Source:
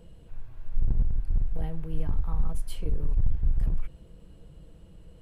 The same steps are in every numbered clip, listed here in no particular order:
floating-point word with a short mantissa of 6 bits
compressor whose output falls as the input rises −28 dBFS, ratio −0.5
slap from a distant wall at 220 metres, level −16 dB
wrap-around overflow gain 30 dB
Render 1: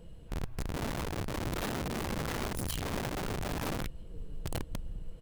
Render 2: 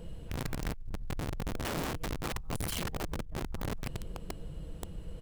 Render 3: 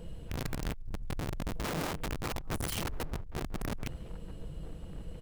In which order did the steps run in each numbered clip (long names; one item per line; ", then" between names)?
slap from a distant wall, then floating-point word with a short mantissa, then wrap-around overflow, then compressor whose output falls as the input rises
floating-point word with a short mantissa, then compressor whose output falls as the input rises, then slap from a distant wall, then wrap-around overflow
compressor whose output falls as the input rises, then wrap-around overflow, then slap from a distant wall, then floating-point word with a short mantissa